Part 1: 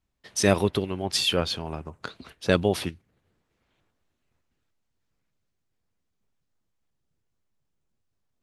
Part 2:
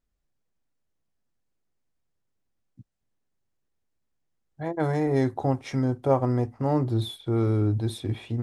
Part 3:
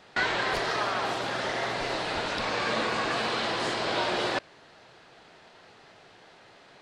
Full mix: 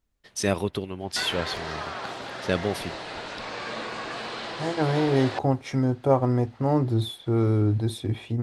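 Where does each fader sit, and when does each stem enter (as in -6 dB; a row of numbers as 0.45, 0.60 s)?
-4.0, +1.5, -5.5 dB; 0.00, 0.00, 1.00 s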